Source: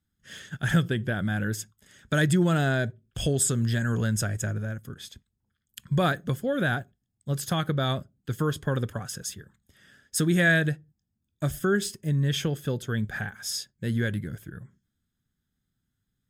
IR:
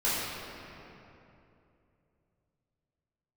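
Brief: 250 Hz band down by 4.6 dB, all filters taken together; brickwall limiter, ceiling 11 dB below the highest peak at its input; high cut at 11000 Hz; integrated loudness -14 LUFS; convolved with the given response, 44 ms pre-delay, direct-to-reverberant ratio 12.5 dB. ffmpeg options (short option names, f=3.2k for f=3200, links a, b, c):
-filter_complex "[0:a]lowpass=11k,equalizer=f=250:t=o:g=-8,alimiter=limit=-23dB:level=0:latency=1,asplit=2[a][b];[1:a]atrim=start_sample=2205,adelay=44[c];[b][c]afir=irnorm=-1:irlink=0,volume=-24dB[d];[a][d]amix=inputs=2:normalize=0,volume=19dB"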